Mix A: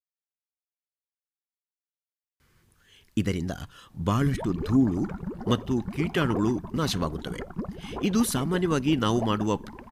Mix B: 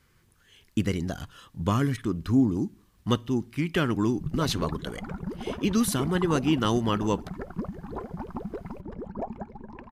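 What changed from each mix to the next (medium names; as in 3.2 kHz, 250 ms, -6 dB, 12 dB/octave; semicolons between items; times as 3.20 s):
speech: entry -2.40 s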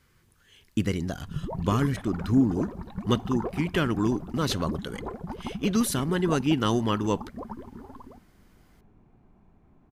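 background: entry -2.90 s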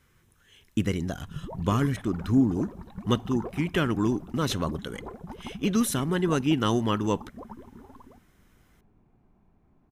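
speech: add band-stop 4.6 kHz, Q 6.2; background -4.5 dB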